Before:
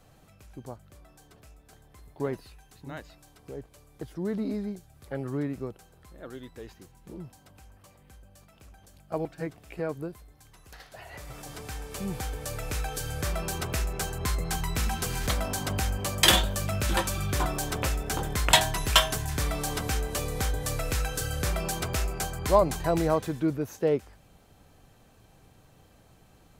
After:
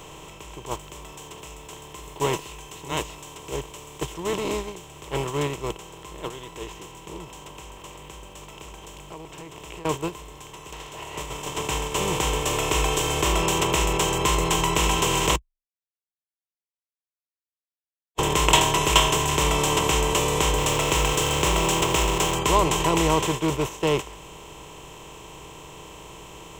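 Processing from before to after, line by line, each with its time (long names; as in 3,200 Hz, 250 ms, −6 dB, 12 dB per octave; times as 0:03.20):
0:00.71–0:04.20: high-shelf EQ 4,200 Hz +9.5 dB
0:07.24–0:09.85: downward compressor, threshold −44 dBFS
0:12.42–0:13.38: comb filter 2.8 ms, depth 59%
0:15.36–0:18.18: silence
0:20.58–0:22.35: hold until the input has moved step −36.5 dBFS
whole clip: compressor on every frequency bin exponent 0.4; noise gate −23 dBFS, range −10 dB; EQ curve with evenly spaced ripples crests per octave 0.72, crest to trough 10 dB; level −3 dB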